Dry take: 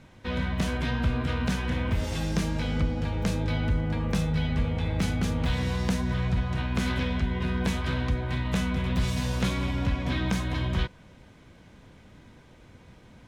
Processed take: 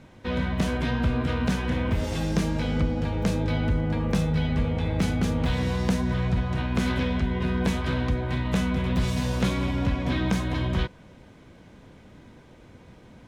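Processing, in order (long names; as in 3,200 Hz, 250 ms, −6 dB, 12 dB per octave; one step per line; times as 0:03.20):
parametric band 380 Hz +4.5 dB 2.7 octaves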